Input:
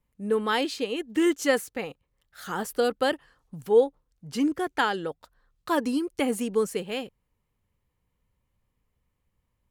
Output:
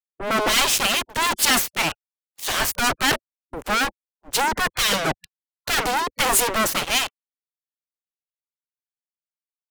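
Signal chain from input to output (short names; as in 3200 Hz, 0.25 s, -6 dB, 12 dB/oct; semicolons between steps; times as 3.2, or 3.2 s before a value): fuzz box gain 41 dB, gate -41 dBFS; spectral gate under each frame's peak -10 dB weak; three-band expander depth 100%; gain +1.5 dB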